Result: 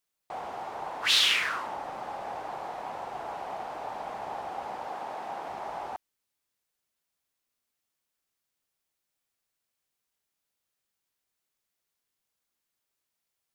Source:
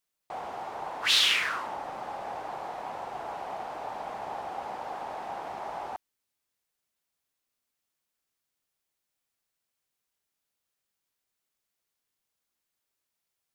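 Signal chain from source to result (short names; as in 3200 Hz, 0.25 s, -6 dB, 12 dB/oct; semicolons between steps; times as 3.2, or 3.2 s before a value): 4.86–5.48 HPF 120 Hz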